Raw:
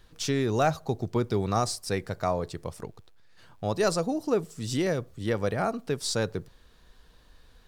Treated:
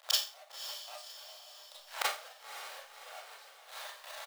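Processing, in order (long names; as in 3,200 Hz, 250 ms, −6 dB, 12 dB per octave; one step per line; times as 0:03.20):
each half-wave held at its own peak
elliptic high-pass filter 600 Hz, stop band 50 dB
parametric band 3,700 Hz +3 dB 0.7 octaves
tempo change 1.8×
gate with flip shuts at −28 dBFS, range −40 dB
gate pattern ".x...xxx..xx" 171 BPM −12 dB
on a send: feedback delay with all-pass diffusion 554 ms, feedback 51%, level −10.5 dB
on the sum: four-comb reverb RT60 0.35 s, combs from 28 ms, DRR −6.5 dB
level +12.5 dB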